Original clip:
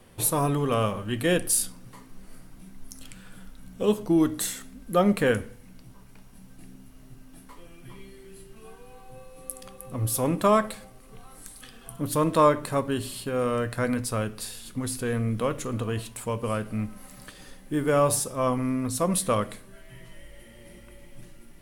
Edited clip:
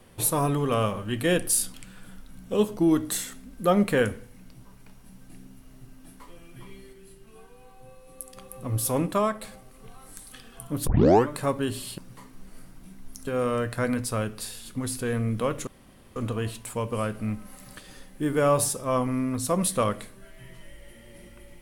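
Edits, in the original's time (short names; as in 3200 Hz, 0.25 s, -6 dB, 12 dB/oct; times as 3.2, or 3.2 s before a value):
1.74–3.03 move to 13.27
8.22–9.66 gain -3.5 dB
10.29–10.71 fade out quadratic, to -6 dB
12.16 tape start 0.41 s
15.67 insert room tone 0.49 s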